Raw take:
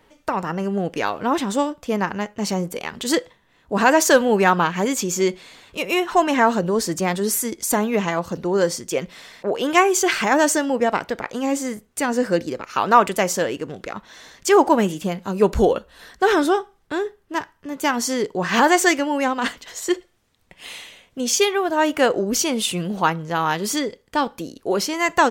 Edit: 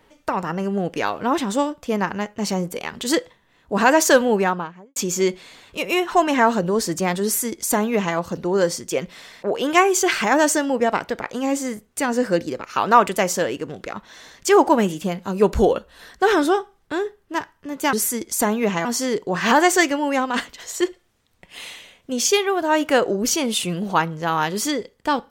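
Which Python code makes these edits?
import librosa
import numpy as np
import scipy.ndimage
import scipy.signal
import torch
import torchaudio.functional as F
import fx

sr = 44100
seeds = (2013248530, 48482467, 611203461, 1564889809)

y = fx.studio_fade_out(x, sr, start_s=4.17, length_s=0.79)
y = fx.edit(y, sr, fx.duplicate(start_s=7.24, length_s=0.92, to_s=17.93), tone=tone)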